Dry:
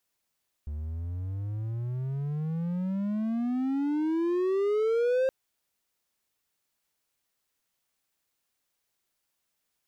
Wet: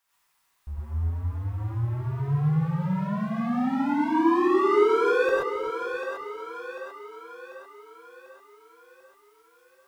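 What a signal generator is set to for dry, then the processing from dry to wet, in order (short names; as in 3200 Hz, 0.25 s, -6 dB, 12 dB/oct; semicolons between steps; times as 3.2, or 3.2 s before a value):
gliding synth tone triangle, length 4.62 s, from 72.6 Hz, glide +34.5 st, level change +10 dB, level -20 dB
graphic EQ 125/250/500/1000/2000 Hz -3/-8/-5/+10/+4 dB; split-band echo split 470 Hz, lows 0.269 s, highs 0.743 s, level -7 dB; non-linear reverb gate 0.15 s rising, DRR -7.5 dB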